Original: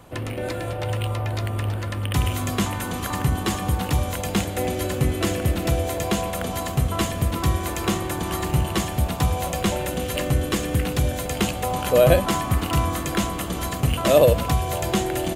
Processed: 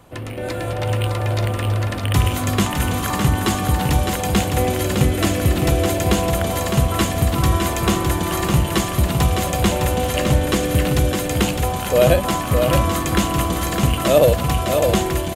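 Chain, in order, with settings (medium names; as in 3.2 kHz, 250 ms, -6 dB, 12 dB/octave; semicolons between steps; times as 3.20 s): level rider gain up to 5.5 dB; delay 609 ms -5 dB; 9.94–10.63 s: loudspeaker Doppler distortion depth 0.11 ms; trim -1 dB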